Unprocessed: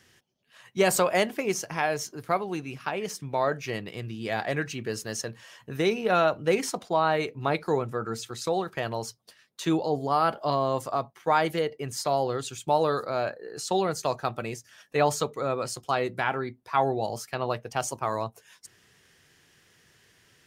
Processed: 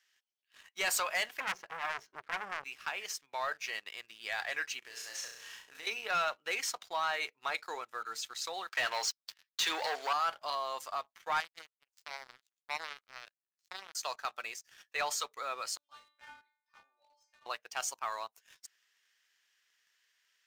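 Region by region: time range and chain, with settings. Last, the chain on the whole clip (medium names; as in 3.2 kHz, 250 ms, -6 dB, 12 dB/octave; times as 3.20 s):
1.40–2.64 s: low-pass 2.1 kHz + peaking EQ 150 Hz +14.5 dB 2.8 oct + transformer saturation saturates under 2.3 kHz
4.79–5.87 s: CVSD coder 64 kbps + flutter echo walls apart 5.7 m, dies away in 0.58 s + compression 3:1, threshold -36 dBFS
8.69–10.13 s: band-pass 460–6400 Hz + waveshaping leveller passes 3
11.40–13.95 s: hum notches 50/100/150/200/250/300/350/400/450 Hz + power-law waveshaper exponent 3
15.77–17.46 s: distance through air 72 m + inharmonic resonator 290 Hz, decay 0.59 s, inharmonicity 0.002
whole clip: high-pass 1.4 kHz 12 dB/octave; peaking EQ 10 kHz -9.5 dB 0.44 oct; waveshaping leveller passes 2; trim -7.5 dB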